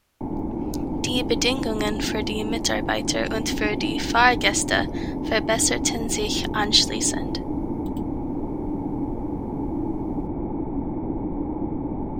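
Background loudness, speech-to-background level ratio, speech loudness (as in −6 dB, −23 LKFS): −28.5 LKFS, 5.5 dB, −23.0 LKFS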